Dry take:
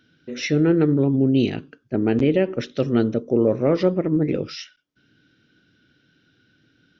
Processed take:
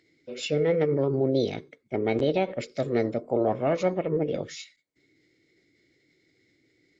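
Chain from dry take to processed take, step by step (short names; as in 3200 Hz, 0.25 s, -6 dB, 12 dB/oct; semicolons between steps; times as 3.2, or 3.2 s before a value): formant shift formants +5 st; small resonant body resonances 2200 Hz, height 16 dB, ringing for 55 ms; gain -6 dB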